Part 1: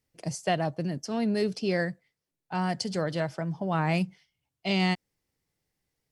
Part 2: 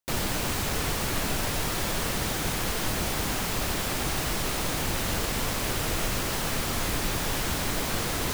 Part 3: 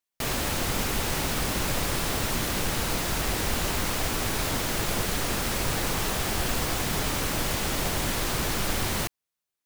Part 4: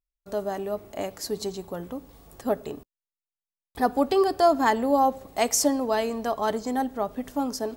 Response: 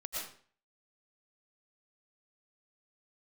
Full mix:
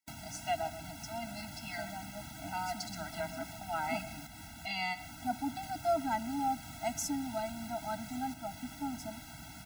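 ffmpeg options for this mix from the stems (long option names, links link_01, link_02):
-filter_complex "[0:a]highpass=540,volume=-4.5dB,asplit=3[link_01][link_02][link_03];[link_02]volume=-13.5dB[link_04];[1:a]volume=-8dB,asplit=3[link_05][link_06][link_07];[link_05]atrim=end=4.27,asetpts=PTS-STARTPTS,afade=type=out:start_time=4.266:duration=0.004:curve=hsin[link_08];[link_06]atrim=start=4.27:end=5.63,asetpts=PTS-STARTPTS,volume=0[link_09];[link_07]atrim=start=5.63,asetpts=PTS-STARTPTS,afade=type=in:duration=0.004:curve=hsin[link_10];[link_08][link_09][link_10]concat=n=3:v=0:a=1[link_11];[2:a]adelay=1000,volume=-15dB[link_12];[3:a]adelay=1450,volume=-10.5dB[link_13];[link_03]apad=whole_len=470011[link_14];[link_12][link_14]sidechaincompress=threshold=-42dB:ratio=4:attack=16:release=167[link_15];[link_11][link_15]amix=inputs=2:normalize=0,acompressor=threshold=-41dB:ratio=6,volume=0dB[link_16];[4:a]atrim=start_sample=2205[link_17];[link_04][link_17]afir=irnorm=-1:irlink=0[link_18];[link_01][link_13][link_16][link_18]amix=inputs=4:normalize=0,highpass=65,afftfilt=real='re*eq(mod(floor(b*sr/1024/320),2),0)':imag='im*eq(mod(floor(b*sr/1024/320),2),0)':win_size=1024:overlap=0.75"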